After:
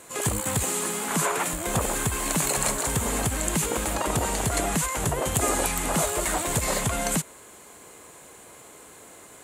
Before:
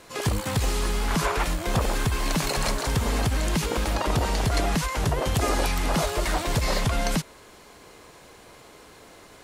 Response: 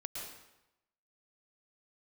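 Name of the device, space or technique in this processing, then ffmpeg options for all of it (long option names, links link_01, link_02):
budget condenser microphone: -filter_complex "[0:a]highpass=frequency=110:poles=1,highshelf=frequency=6300:width_type=q:width=3:gain=6,asettb=1/sr,asplit=3[link_01][link_02][link_03];[link_01]atrim=end=0.634[link_04];[link_02]atrim=start=0.63:end=1.53,asetpts=PTS-STARTPTS,afade=type=in:duration=0.004:curve=qsin,afade=type=out:start_time=0.896:duration=0.004:curve=qsin,highpass=frequency=130:width=0.5412,highpass=frequency=130:width=1.3066[link_05];[link_03]atrim=start=1.526[link_06];[link_04][link_05]acrossfade=duration=0.004:curve1=hsin:curve2=qsin[link_07];[link_07][link_06]acrossfade=duration=0.004:curve1=qsin:curve2=hsin"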